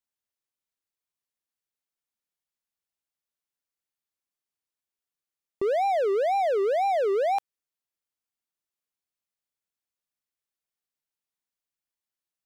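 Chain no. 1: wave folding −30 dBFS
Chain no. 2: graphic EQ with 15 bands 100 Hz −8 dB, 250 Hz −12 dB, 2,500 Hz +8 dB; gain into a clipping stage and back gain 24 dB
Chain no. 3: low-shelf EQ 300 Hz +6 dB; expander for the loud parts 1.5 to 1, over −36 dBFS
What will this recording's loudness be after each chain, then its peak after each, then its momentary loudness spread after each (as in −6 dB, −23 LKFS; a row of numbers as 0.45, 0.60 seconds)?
−33.5, −27.5, −24.0 LKFS; −30.0, −24.0, −17.5 dBFS; 4, 4, 4 LU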